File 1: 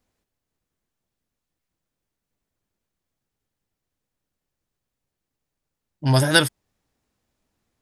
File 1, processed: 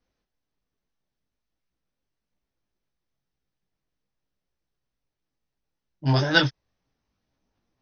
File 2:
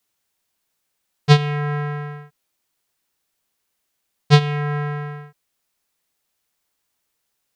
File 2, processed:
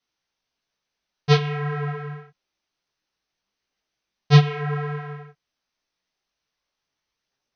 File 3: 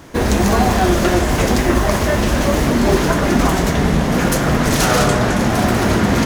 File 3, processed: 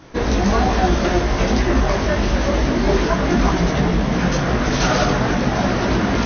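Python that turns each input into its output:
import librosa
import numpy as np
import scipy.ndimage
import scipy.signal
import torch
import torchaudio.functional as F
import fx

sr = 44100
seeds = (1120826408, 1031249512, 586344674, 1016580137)

y = fx.chorus_voices(x, sr, voices=6, hz=1.1, base_ms=19, depth_ms=3.8, mix_pct=45)
y = fx.brickwall_lowpass(y, sr, high_hz=6400.0)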